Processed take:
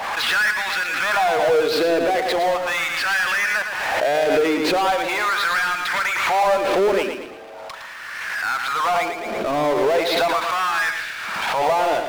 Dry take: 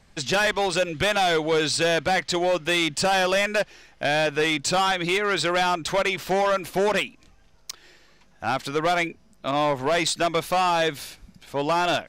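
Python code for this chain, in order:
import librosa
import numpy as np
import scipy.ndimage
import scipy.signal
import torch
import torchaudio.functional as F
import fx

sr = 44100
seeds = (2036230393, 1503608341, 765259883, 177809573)

y = fx.filter_lfo_highpass(x, sr, shape='sine', hz=0.39, low_hz=370.0, high_hz=1700.0, q=3.1)
y = scipy.ndimage.gaussian_filter1d(y, 2.7, mode='constant')
y = fx.power_curve(y, sr, exponent=0.5)
y = fx.echo_feedback(y, sr, ms=111, feedback_pct=40, wet_db=-7)
y = fx.pre_swell(y, sr, db_per_s=27.0)
y = y * librosa.db_to_amplitude(-6.5)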